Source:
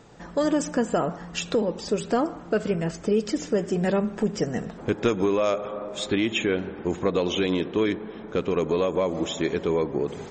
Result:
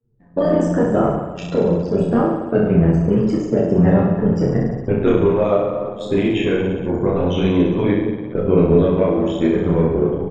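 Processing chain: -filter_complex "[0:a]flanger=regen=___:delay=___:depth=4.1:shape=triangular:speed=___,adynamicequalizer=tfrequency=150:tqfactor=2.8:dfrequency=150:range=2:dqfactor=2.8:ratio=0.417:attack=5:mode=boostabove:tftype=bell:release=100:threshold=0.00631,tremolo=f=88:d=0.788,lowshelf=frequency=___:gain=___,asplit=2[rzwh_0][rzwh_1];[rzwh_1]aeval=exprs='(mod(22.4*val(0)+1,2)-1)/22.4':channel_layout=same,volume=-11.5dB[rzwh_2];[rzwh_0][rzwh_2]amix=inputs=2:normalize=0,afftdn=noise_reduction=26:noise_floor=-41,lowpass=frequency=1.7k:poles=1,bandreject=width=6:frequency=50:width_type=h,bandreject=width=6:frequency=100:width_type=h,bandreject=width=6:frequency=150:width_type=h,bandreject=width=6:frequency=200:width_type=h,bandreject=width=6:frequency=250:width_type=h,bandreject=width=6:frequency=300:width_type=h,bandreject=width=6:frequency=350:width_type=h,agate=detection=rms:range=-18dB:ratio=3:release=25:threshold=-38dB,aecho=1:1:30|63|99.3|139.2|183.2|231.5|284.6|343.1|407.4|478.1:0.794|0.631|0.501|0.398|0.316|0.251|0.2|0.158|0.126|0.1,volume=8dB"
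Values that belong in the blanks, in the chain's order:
8, 8.1, 0.86, 340, 7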